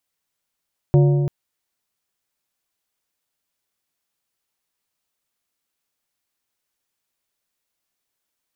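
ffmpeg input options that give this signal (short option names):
-f lavfi -i "aevalsrc='0.335*pow(10,-3*t/2.14)*sin(2*PI*143*t)+0.15*pow(10,-3*t/1.626)*sin(2*PI*357.5*t)+0.0668*pow(10,-3*t/1.412)*sin(2*PI*572*t)+0.0299*pow(10,-3*t/1.32)*sin(2*PI*715*t)+0.0133*pow(10,-3*t/1.221)*sin(2*PI*929.5*t)':d=0.34:s=44100"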